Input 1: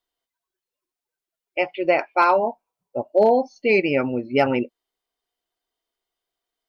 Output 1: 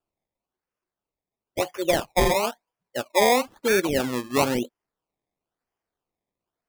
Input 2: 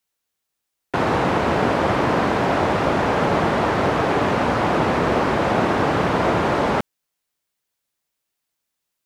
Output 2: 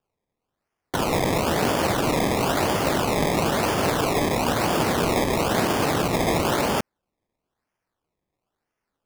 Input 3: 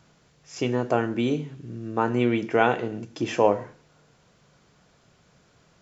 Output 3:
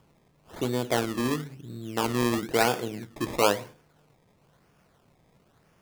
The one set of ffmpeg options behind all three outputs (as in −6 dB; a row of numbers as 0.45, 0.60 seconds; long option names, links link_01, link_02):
-af "acrusher=samples=21:mix=1:aa=0.000001:lfo=1:lforange=21:lforate=1,volume=-3dB"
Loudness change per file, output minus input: −3.0, −3.0, −2.0 LU